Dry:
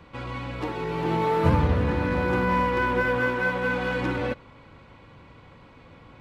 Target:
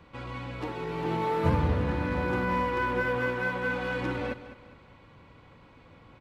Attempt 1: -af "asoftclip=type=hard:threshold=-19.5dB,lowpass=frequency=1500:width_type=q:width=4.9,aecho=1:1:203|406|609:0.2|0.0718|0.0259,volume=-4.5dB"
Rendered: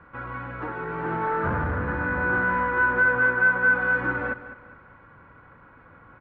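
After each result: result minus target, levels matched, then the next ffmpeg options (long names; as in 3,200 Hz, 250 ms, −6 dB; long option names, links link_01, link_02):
hard clipping: distortion +32 dB; 2,000 Hz band +6.0 dB
-af "asoftclip=type=hard:threshold=-8.5dB,lowpass=frequency=1500:width_type=q:width=4.9,aecho=1:1:203|406|609:0.2|0.0718|0.0259,volume=-4.5dB"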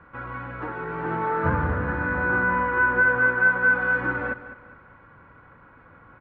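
2,000 Hz band +6.0 dB
-af "asoftclip=type=hard:threshold=-8.5dB,aecho=1:1:203|406|609:0.2|0.0718|0.0259,volume=-4.5dB"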